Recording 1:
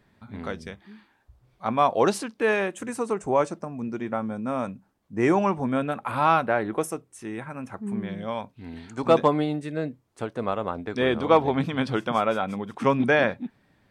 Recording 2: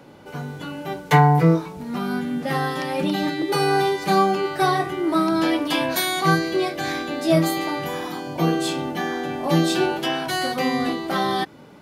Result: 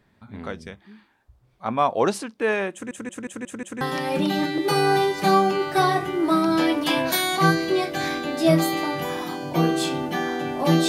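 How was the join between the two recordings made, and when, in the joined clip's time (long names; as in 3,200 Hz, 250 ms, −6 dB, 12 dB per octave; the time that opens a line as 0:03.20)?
recording 1
0:02.73: stutter in place 0.18 s, 6 plays
0:03.81: continue with recording 2 from 0:02.65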